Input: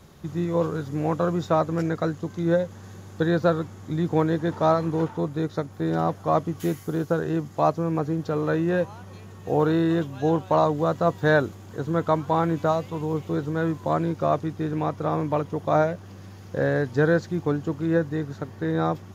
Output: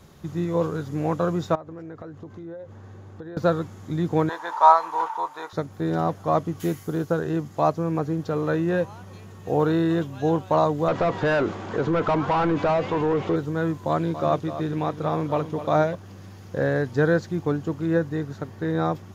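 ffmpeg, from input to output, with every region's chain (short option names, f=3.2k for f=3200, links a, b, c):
-filter_complex "[0:a]asettb=1/sr,asplit=3[a][b][c];[a]atrim=end=1.554[d];[b]atrim=start=1.55:end=3.37,asetpts=PTS-STARTPTS,afade=t=in:d=0.004:c=qsin,afade=t=out:st=1.816:d=0.004:c=qsin,lowpass=f=1.3k:p=1,equalizer=f=180:w=6:g=-11.5,acompressor=threshold=-35dB:ratio=8:attack=3.2:release=140:knee=1:detection=peak[e];[c]atrim=start=3.366[f];[d][e]acrossfade=d=0.004:c1=hsin:c2=qsin[g];[g][f]acrossfade=d=0.004:c1=qsin:c2=hsin,asettb=1/sr,asplit=3[h][i][j];[h]atrim=end=4.294[k];[i]atrim=start=4.29:end=5.53,asetpts=PTS-STARTPTS,afade=t=in:d=0.004:c=qsin,afade=t=out:st=1.236:d=0.004:c=qsin,highpass=f=940:t=q:w=5.9,asplit=2[l][m];[m]adelay=21,volume=-13.5dB[n];[l][n]amix=inputs=2:normalize=0,atrim=end_sample=54684[o];[j]atrim=start=5.526[p];[k][o]acrossfade=d=0.004:c1=hsin:c2=qsin[q];[q][p]acrossfade=d=0.004:c1=qsin:c2=hsin,asettb=1/sr,asplit=3[r][s][t];[r]atrim=end=10.884[u];[s]atrim=start=10.88:end=13.36,asetpts=PTS-STARTPTS,afade=t=in:d=0.004:c=qsin,afade=t=out:st=2.476:d=0.004:c=qsin,asplit=2[v][w];[w]highpass=f=720:p=1,volume=26dB,asoftclip=type=tanh:threshold=-8dB[x];[v][x]amix=inputs=2:normalize=0,lowpass=f=1.2k:p=1,volume=-6dB,lowpass=6.2k,acompressor=threshold=-20dB:ratio=2.5:attack=3.2:release=140:knee=1:detection=peak[y];[t]atrim=start=13.356[z];[u][y]acrossfade=d=0.004:c1=hsin:c2=qsin[aa];[aa][z]acrossfade=d=0.004:c1=qsin:c2=hsin,asettb=1/sr,asplit=3[ab][ac][ad];[ab]atrim=end=13.894[ae];[ac]atrim=start=13.89:end=15.95,asetpts=PTS-STARTPTS,afade=t=in:d=0.004:c=qsin,afade=t=out:st=2.056:d=0.004:c=qsin,equalizer=f=3.5k:t=o:w=0.7:g=4.5,aecho=1:1:252:0.266,atrim=end_sample=90846[af];[ad]atrim=start=15.946[ag];[ae][af]acrossfade=d=0.004:c1=hsin:c2=qsin[ah];[ah][ag]acrossfade=d=0.004:c1=qsin:c2=hsin"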